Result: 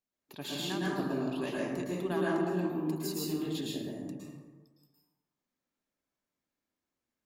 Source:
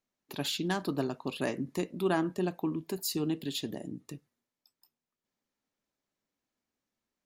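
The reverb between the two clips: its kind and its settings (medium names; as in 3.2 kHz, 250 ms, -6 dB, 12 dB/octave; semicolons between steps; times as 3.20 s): plate-style reverb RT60 1.3 s, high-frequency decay 0.45×, pre-delay 100 ms, DRR -6 dB; trim -8 dB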